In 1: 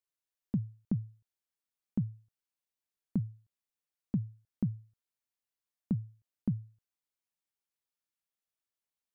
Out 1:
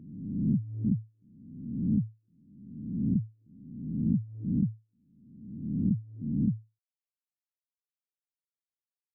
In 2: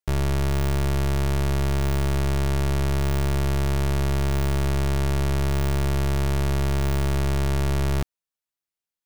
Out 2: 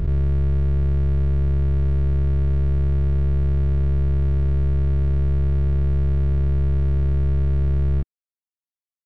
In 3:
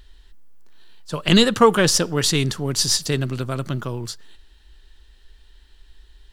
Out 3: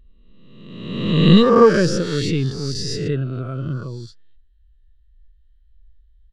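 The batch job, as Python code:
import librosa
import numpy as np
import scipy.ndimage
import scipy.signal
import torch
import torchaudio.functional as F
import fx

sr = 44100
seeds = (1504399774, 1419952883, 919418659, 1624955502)

p1 = fx.spec_swells(x, sr, rise_s=1.77)
p2 = fx.lowpass(p1, sr, hz=2700.0, slope=6)
p3 = fx.peak_eq(p2, sr, hz=830.0, db=-5.5, octaves=0.85)
p4 = 10.0 ** (-15.0 / 20.0) * np.tanh(p3 / 10.0 ** (-15.0 / 20.0))
p5 = p3 + F.gain(torch.from_numpy(p4), -4.0).numpy()
p6 = fx.spectral_expand(p5, sr, expansion=1.5)
y = F.gain(torch.from_numpy(p6), -3.0).numpy()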